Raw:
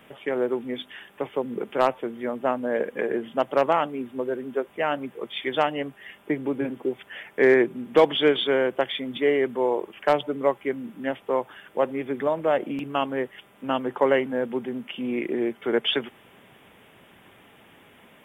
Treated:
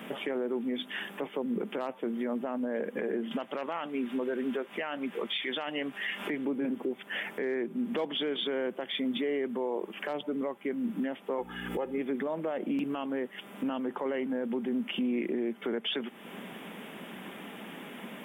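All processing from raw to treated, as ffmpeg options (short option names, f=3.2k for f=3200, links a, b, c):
-filter_complex "[0:a]asettb=1/sr,asplit=3[a][b][c];[a]atrim=end=3.314[d];[b]atrim=start=3.31:end=6.45,asetpts=PTS-STARTPTS,afade=t=in:d=0.004:c=qsin,afade=t=out:st=3.136:d=0.004:c=qsin,equalizer=f=2.6k:w=0.41:g=9.5,acompressor=mode=upward:threshold=-35dB:ratio=2.5:attack=3.2:release=140:knee=2.83:detection=peak[e];[c]atrim=start=6.446[f];[d][e]acrossfade=d=0.004:c1=hsin:c2=qsin[g];[g][f]acrossfade=d=0.004:c1=qsin:c2=hsin,asettb=1/sr,asplit=3[h][i][j];[h]atrim=end=11.384[k];[i]atrim=start=11.38:end=11.98,asetpts=PTS-STARTPTS,afade=t=in:d=0.004:c=qsin,afade=t=out:st=0.596:d=0.004:c=qsin,aecho=1:1:2.4:0.81,atrim=end_sample=26460,acompressor=mode=upward:threshold=-38dB:ratio=2.5:attack=3.2:release=140:knee=2.83:detection=peak,aeval=exprs='val(0)+0.01*(sin(2*PI*60*n/s)+sin(2*PI*2*60*n/s)/2+sin(2*PI*3*60*n/s)/3+sin(2*PI*4*60*n/s)/4+sin(2*PI*5*60*n/s)/5)':c=same[l];[j]atrim=start=11.976[m];[k][l]acrossfade=d=0.004:c1=hsin:c2=qsin[n];[n][m]acrossfade=d=0.004:c1=qsin:c2=hsin,lowshelf=f=140:t=q:w=3:g=-12,acompressor=threshold=-38dB:ratio=3,alimiter=level_in=7.5dB:limit=-24dB:level=0:latency=1:release=23,volume=-7.5dB,volume=7.5dB"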